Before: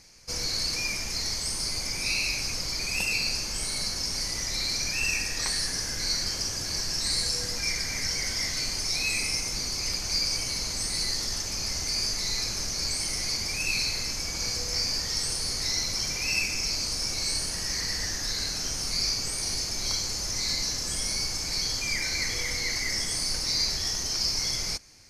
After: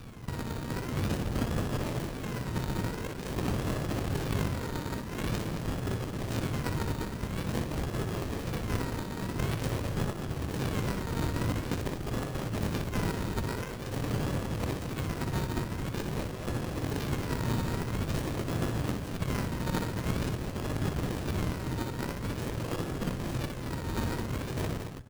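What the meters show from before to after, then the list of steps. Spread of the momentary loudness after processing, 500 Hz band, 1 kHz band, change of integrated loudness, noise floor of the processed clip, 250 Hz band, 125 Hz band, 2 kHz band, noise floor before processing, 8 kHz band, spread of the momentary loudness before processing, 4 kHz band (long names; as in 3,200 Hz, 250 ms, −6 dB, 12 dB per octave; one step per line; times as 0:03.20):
4 LU, +7.5 dB, +5.0 dB, −6.5 dB, −38 dBFS, +10.5 dB, +9.5 dB, −8.5 dB, −33 dBFS, −18.5 dB, 3 LU, −18.0 dB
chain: high-pass filter 63 Hz 24 dB per octave
reverb reduction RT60 0.85 s
low-pass filter 5,500 Hz 24 dB per octave
parametric band 120 Hz +14 dB 1.3 octaves
in parallel at −2 dB: brickwall limiter −27 dBFS, peak gain reduction 10.5 dB
on the sum: compressor whose output falls as the input rises −32 dBFS, ratio −0.5
sample-and-hold swept by an LFO 37×, swing 60% 0.47 Hz
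on a send: loudspeakers that aren't time-aligned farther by 21 metres −6 dB, 76 metres −7 dB
on the sum: windowed peak hold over 33 samples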